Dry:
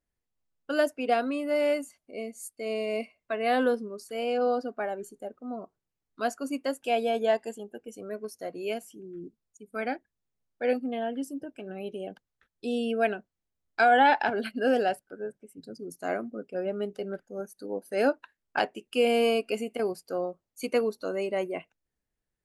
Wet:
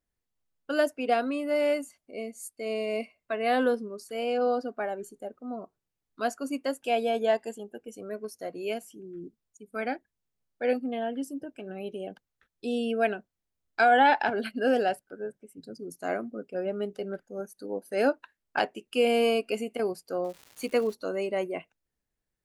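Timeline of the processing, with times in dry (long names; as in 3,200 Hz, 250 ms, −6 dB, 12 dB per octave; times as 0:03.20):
0:20.23–0:20.93: surface crackle 420 per second −40 dBFS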